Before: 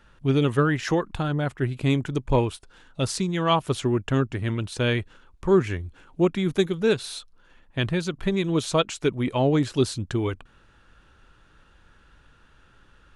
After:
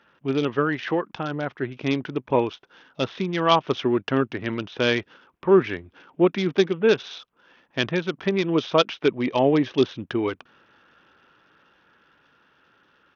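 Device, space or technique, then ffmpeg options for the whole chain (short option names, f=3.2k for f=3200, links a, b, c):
Bluetooth headset: -filter_complex "[0:a]asettb=1/sr,asplit=3[a][b][c];[a]atrim=end=9.084[d];[b]atrim=start=9.08:end=9.84,asetpts=PTS-STARTPTS,afade=t=in:d=0.004:c=qsin,afade=t=out:st=0.756:d=0.004:c=qsin,bandreject=f=1.4k:w=6.5[e];[c]atrim=start=9.836[f];[d][e]acrossfade=d=0.004:c1=hsin:c2=qsin[g];[g][f]acrossfade=d=0.004:c1=qsin:c2=hsin,highpass=230,dynaudnorm=f=430:g=11:m=4dB,aresample=8000,aresample=44100" -ar 48000 -c:a sbc -b:a 64k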